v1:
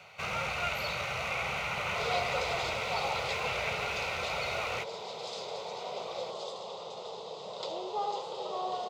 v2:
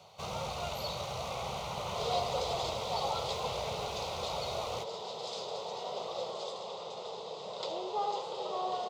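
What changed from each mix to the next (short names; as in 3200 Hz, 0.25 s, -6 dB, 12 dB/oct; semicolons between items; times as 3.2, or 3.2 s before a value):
first sound: add band shelf 1900 Hz -15.5 dB 1.2 oct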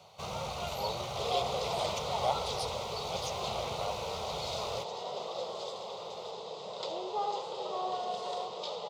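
speech: unmuted; second sound: entry -0.80 s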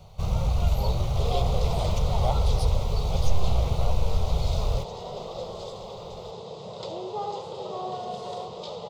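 master: remove weighting filter A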